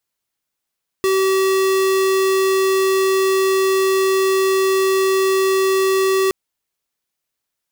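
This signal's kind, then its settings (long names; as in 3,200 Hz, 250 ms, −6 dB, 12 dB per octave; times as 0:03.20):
tone square 383 Hz −16 dBFS 5.27 s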